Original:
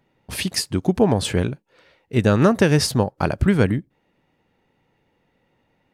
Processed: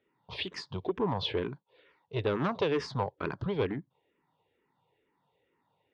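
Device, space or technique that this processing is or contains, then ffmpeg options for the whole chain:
barber-pole phaser into a guitar amplifier: -filter_complex "[0:a]asplit=2[a][b];[b]afreqshift=-2.2[c];[a][c]amix=inputs=2:normalize=1,asoftclip=type=tanh:threshold=-16.5dB,highpass=76,equalizer=f=82:t=q:w=4:g=-5,equalizer=f=220:t=q:w=4:g=-6,equalizer=f=420:t=q:w=4:g=6,equalizer=f=1k:t=q:w=4:g=10,equalizer=f=3.5k:t=q:w=4:g=6,lowpass=f=4.4k:w=0.5412,lowpass=f=4.4k:w=1.3066,volume=-8dB"

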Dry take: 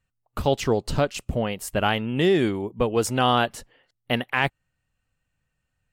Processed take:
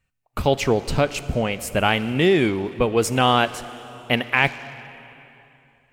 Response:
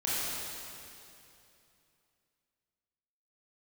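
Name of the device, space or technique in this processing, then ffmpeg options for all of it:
saturated reverb return: -filter_complex "[0:a]equalizer=f=2.3k:w=4.6:g=7.5,asplit=2[a][b];[1:a]atrim=start_sample=2205[c];[b][c]afir=irnorm=-1:irlink=0,asoftclip=type=tanh:threshold=-14dB,volume=-19dB[d];[a][d]amix=inputs=2:normalize=0,volume=2dB"

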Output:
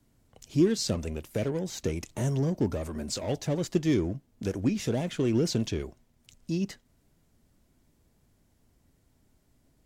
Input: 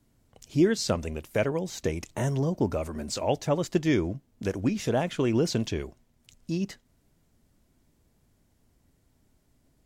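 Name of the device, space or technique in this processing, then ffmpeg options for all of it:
one-band saturation: -filter_complex "[0:a]acrossover=split=480|3200[a][b][c];[b]asoftclip=type=tanh:threshold=-39dB[d];[a][d][c]amix=inputs=3:normalize=0"

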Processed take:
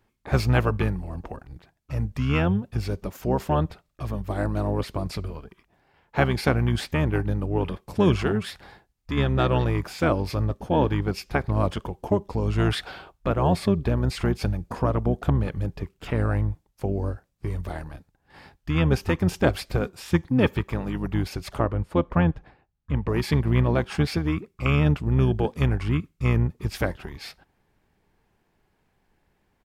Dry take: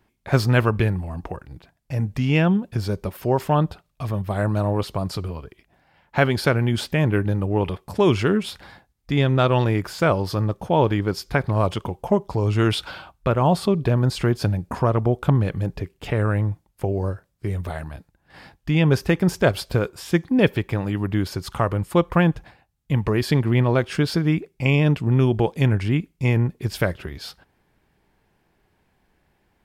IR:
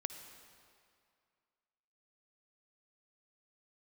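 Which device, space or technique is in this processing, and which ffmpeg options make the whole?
octave pedal: -filter_complex "[0:a]asplit=3[a][b][c];[a]afade=t=out:st=21.58:d=0.02[d];[b]aemphasis=mode=reproduction:type=75kf,afade=t=in:st=21.58:d=0.02,afade=t=out:st=23.08:d=0.02[e];[c]afade=t=in:st=23.08:d=0.02[f];[d][e][f]amix=inputs=3:normalize=0,asplit=2[g][h];[h]asetrate=22050,aresample=44100,atempo=2,volume=-4dB[i];[g][i]amix=inputs=2:normalize=0,volume=-4.5dB"

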